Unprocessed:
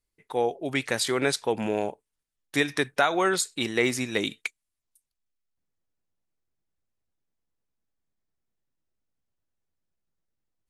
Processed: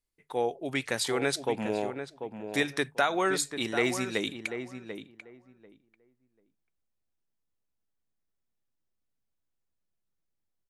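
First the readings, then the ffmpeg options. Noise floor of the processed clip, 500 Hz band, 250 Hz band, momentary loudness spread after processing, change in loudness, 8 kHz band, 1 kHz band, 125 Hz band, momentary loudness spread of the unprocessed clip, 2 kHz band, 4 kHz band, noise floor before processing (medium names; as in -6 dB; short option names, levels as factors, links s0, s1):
-81 dBFS, -3.0 dB, -3.0 dB, 13 LU, -3.5 dB, -3.5 dB, -3.0 dB, -3.5 dB, 7 LU, -3.0 dB, -3.5 dB, -85 dBFS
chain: -filter_complex "[0:a]bandreject=f=50:t=h:w=6,bandreject=f=100:t=h:w=6,bandreject=f=150:t=h:w=6,asplit=2[s0][s1];[s1]adelay=741,lowpass=f=1500:p=1,volume=0.398,asplit=2[s2][s3];[s3]adelay=741,lowpass=f=1500:p=1,volume=0.18,asplit=2[s4][s5];[s5]adelay=741,lowpass=f=1500:p=1,volume=0.18[s6];[s0][s2][s4][s6]amix=inputs=4:normalize=0,volume=0.668"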